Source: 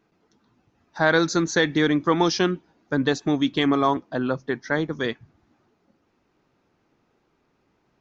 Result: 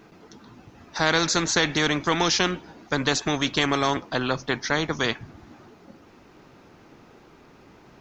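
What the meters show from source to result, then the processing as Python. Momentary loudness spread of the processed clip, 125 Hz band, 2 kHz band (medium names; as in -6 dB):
6 LU, -1.0 dB, +1.0 dB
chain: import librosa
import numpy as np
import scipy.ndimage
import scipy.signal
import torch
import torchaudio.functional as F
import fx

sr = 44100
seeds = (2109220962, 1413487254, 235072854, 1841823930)

y = fx.spectral_comp(x, sr, ratio=2.0)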